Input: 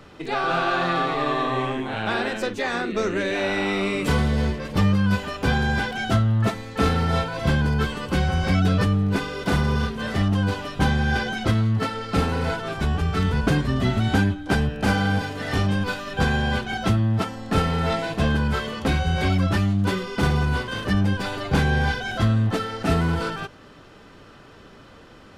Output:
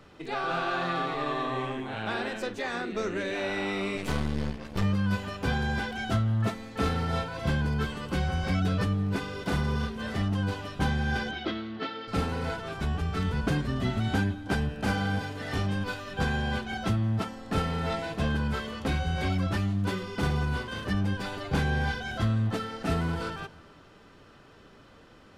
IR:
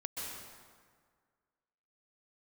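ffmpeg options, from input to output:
-filter_complex "[0:a]asettb=1/sr,asplit=3[a][b][c];[a]atrim=end=11.314[d];[b]atrim=start=11.31:end=12.08,asetpts=PTS-STARTPTS,afade=t=in:d=0.004:c=qsin,afade=t=out:st=0.766:d=0.004:c=qsin,highpass=f=210:w=0.5412,highpass=f=210:w=1.3066,equalizer=f=230:t=q:w=4:g=-4,equalizer=f=340:t=q:w=4:g=6,equalizer=f=500:t=q:w=4:g=-4,equalizer=f=980:t=q:w=4:g=-5,equalizer=f=3.4k:t=q:w=4:g=5,lowpass=f=4.6k:w=0.5412,lowpass=f=4.6k:w=1.3066[e];[c]atrim=start=12.076[f];[d][e]acrossfade=d=0.004:c1=hsin:c2=qsin[g];[g][f]acrossfade=d=0.004:c1=qsin:c2=hsin,asplit=2[h][i];[1:a]atrim=start_sample=2205,adelay=28[j];[i][j]afir=irnorm=-1:irlink=0,volume=-19.5dB[k];[h][k]amix=inputs=2:normalize=0,asettb=1/sr,asplit=3[l][m][n];[l]atrim=end=3.974[o];[m]atrim=start=3.97:end=4.83,asetpts=PTS-STARTPTS,afade=t=in:d=0.004:c=qsin,afade=t=out:st=0.856:d=0.004:c=qsin,aeval=exprs='0.335*(cos(1*acos(clip(val(0)/0.335,-1,1)))-cos(1*PI/2))+0.0531*(cos(3*acos(clip(val(0)/0.335,-1,1)))-cos(3*PI/2))+0.0266*(cos(4*acos(clip(val(0)/0.335,-1,1)))-cos(4*PI/2))+0.0188*(cos(8*acos(clip(val(0)/0.335,-1,1)))-cos(8*PI/2))':c=same[p];[n]atrim=start=4.826[q];[o][p]acrossfade=d=0.004:c1=hsin:c2=qsin[r];[r][q]acrossfade=d=0.004:c1=qsin:c2=hsin,volume=-7dB"

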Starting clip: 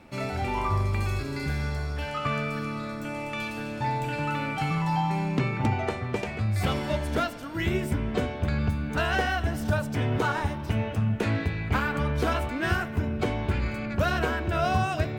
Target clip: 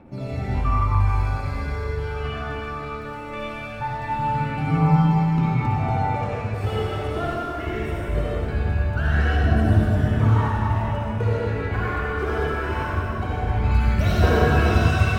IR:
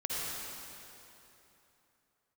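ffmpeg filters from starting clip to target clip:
-filter_complex "[0:a]aphaser=in_gain=1:out_gain=1:delay=2.9:decay=0.7:speed=0.21:type=triangular,asetnsamples=n=441:p=0,asendcmd='13.64 highshelf g 2',highshelf=f=2.2k:g=-11.5[a];[1:a]atrim=start_sample=2205[b];[a][b]afir=irnorm=-1:irlink=0,volume=-3.5dB"

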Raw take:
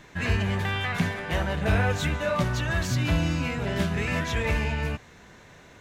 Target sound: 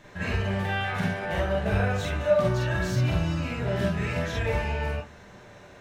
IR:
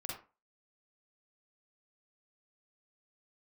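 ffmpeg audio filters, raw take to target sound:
-filter_complex "[0:a]equalizer=f=560:w=1.6:g=5.5,asplit=2[a][b];[b]acompressor=threshold=-31dB:ratio=6,volume=-1dB[c];[a][c]amix=inputs=2:normalize=0[d];[1:a]atrim=start_sample=2205,asetrate=48510,aresample=44100[e];[d][e]afir=irnorm=-1:irlink=0,volume=-4dB"

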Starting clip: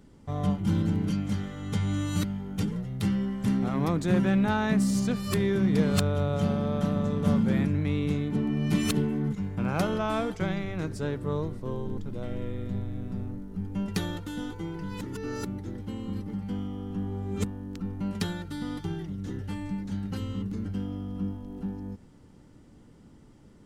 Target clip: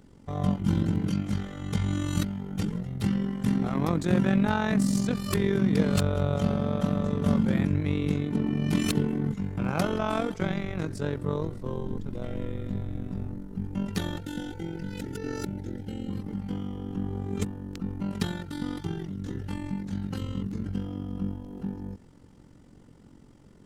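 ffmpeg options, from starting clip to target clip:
-filter_complex "[0:a]tremolo=f=45:d=0.71,asettb=1/sr,asplit=3[a][b][c];[a]atrim=end=14.184[d];[b]atrim=start=14.18:end=16.1,asetpts=PTS-STARTPTS,afade=t=in:d=0.004:c=qsin,afade=t=out:st=1.916:d=0.004:c=qsin,asuperstop=centerf=1100:order=12:qfactor=3[e];[c]atrim=start=16.096[f];[d][e]acrossfade=d=0.004:c1=hsin:c2=qsin[g];[g][f]acrossfade=d=0.004:c1=qsin:c2=hsin,volume=3.5dB"

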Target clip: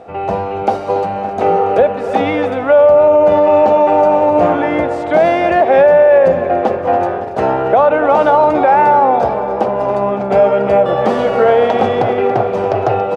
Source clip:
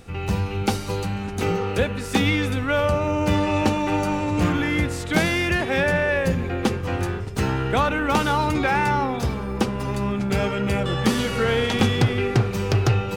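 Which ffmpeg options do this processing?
-af "bandpass=f=660:t=q:w=4.6:csg=0,aecho=1:1:281|562|843|1124|1405|1686:0.178|0.107|0.064|0.0384|0.023|0.0138,alimiter=level_in=24.5dB:limit=-1dB:release=50:level=0:latency=1,volume=-1dB"

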